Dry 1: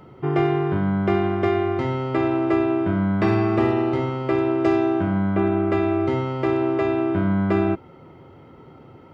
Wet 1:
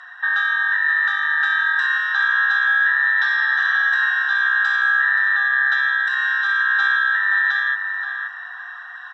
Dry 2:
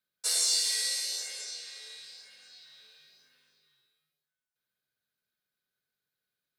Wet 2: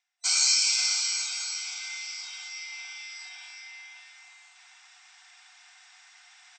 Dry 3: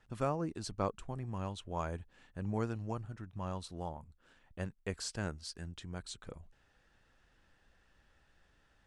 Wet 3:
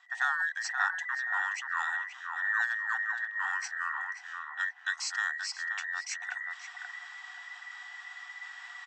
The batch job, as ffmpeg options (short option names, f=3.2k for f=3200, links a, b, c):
-filter_complex "[0:a]afftfilt=real='real(if(between(b,1,1012),(2*floor((b-1)/92)+1)*92-b,b),0)':imag='imag(if(between(b,1,1012),(2*floor((b-1)/92)+1)*92-b,b),0)*if(between(b,1,1012),-1,1)':win_size=2048:overlap=0.75,afftfilt=real='re*between(b*sr/4096,700,8500)':imag='im*between(b*sr/4096,700,8500)':win_size=4096:overlap=0.75,acrossover=split=1200[a][b];[a]acompressor=threshold=-45dB:ratio=5[c];[c][b]amix=inputs=2:normalize=0,alimiter=limit=-17.5dB:level=0:latency=1:release=83,areverse,acompressor=mode=upward:threshold=-37dB:ratio=2.5,areverse,asplit=2[d][e];[e]adelay=528,lowpass=f=1.4k:p=1,volume=-3dB,asplit=2[f][g];[g]adelay=528,lowpass=f=1.4k:p=1,volume=0.43,asplit=2[h][i];[i]adelay=528,lowpass=f=1.4k:p=1,volume=0.43,asplit=2[j][k];[k]adelay=528,lowpass=f=1.4k:p=1,volume=0.43,asplit=2[l][m];[m]adelay=528,lowpass=f=1.4k:p=1,volume=0.43,asplit=2[n][o];[o]adelay=528,lowpass=f=1.4k:p=1,volume=0.43[p];[d][f][h][j][l][n][p]amix=inputs=7:normalize=0,volume=6dB"